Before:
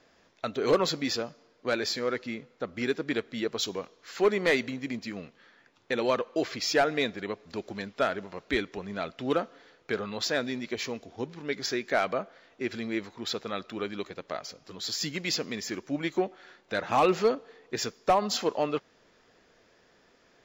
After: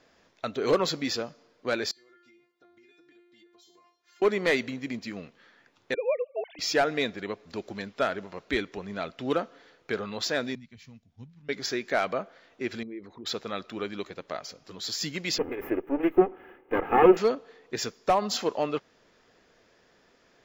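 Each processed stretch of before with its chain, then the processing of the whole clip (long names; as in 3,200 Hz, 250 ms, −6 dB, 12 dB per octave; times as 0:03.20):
0:01.91–0:04.22: high-pass filter 51 Hz + tuned comb filter 350 Hz, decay 0.3 s, mix 100% + downward compressor 16 to 1, threshold −55 dBFS
0:05.94–0:06.59: three sine waves on the formant tracks + phaser with its sweep stopped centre 340 Hz, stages 6
0:10.55–0:11.49: drawn EQ curve 140 Hz 0 dB, 240 Hz −9 dB, 360 Hz −27 dB, 2,000 Hz −15 dB + expander for the loud parts, over −55 dBFS
0:12.83–0:13.26: spectral envelope exaggerated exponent 2 + downward compressor 2 to 1, threshold −42 dBFS
0:15.38–0:17.17: lower of the sound and its delayed copy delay 2.4 ms + drawn EQ curve 120 Hz 0 dB, 250 Hz +12 dB, 2,800 Hz −2 dB, 4,200 Hz −30 dB, 8,700 Hz −27 dB, 14,000 Hz +3 dB
whole clip: no processing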